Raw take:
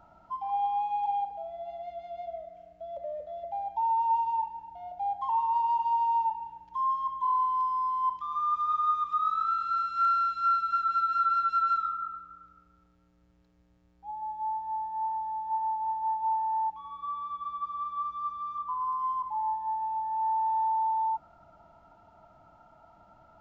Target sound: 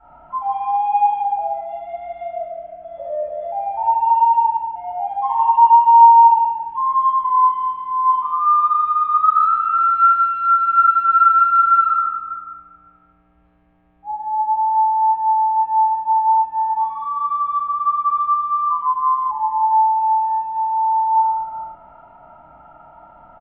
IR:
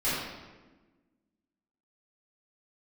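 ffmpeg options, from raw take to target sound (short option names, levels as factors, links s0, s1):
-filter_complex "[0:a]firequalizer=gain_entry='entry(310,0);entry(790,8);entry(3100,1);entry(4600,-21)':delay=0.05:min_phase=1,aecho=1:1:73:0.316[s0];[1:a]atrim=start_sample=2205[s1];[s0][s1]afir=irnorm=-1:irlink=0,volume=0.596"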